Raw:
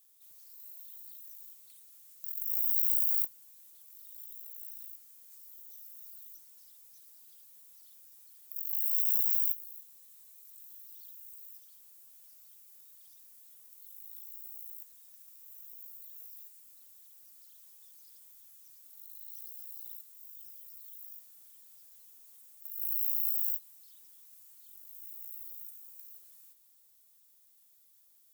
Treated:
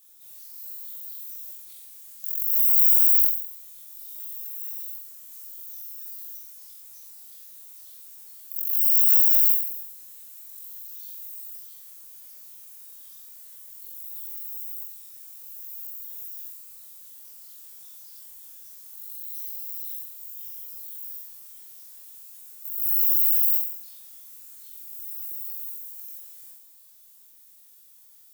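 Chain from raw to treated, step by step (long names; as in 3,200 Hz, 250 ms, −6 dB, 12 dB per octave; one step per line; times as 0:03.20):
flutter between parallel walls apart 3.9 metres, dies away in 0.68 s
level +6.5 dB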